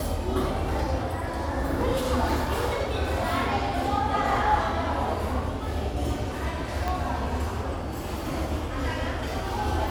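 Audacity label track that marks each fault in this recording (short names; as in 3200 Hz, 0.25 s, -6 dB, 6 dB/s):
6.880000	6.880000	pop -16 dBFS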